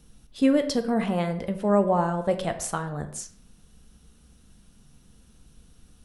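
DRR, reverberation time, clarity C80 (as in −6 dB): 7.5 dB, non-exponential decay, 14.0 dB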